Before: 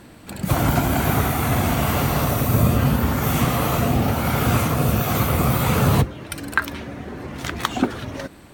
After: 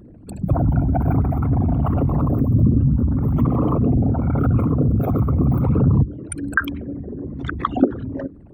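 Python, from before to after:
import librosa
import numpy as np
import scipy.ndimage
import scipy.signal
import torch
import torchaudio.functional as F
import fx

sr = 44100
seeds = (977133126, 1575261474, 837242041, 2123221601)

y = fx.envelope_sharpen(x, sr, power=3.0)
y = fx.dynamic_eq(y, sr, hz=280.0, q=3.9, threshold_db=-41.0, ratio=4.0, max_db=6)
y = y * librosa.db_to_amplitude(1.5)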